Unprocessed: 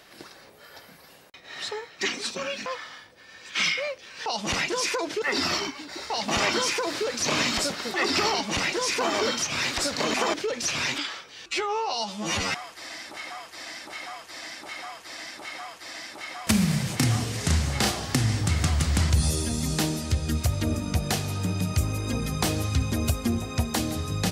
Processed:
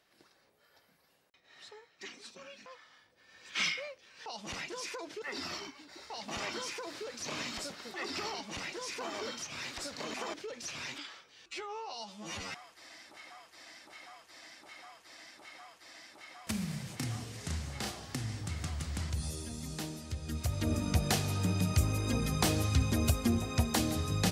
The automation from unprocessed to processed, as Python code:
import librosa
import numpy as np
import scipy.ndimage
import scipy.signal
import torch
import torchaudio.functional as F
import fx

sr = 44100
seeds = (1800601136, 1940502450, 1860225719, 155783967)

y = fx.gain(x, sr, db=fx.line((2.86, -19.0), (3.63, -6.5), (3.9, -14.0), (20.15, -14.0), (20.81, -3.5)))